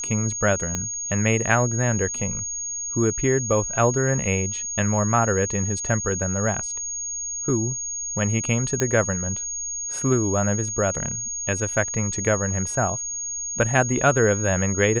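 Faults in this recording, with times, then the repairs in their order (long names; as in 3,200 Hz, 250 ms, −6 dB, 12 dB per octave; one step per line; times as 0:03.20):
whistle 6,600 Hz −27 dBFS
0:00.75: click −11 dBFS
0:08.80: click −7 dBFS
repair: click removal
notch filter 6,600 Hz, Q 30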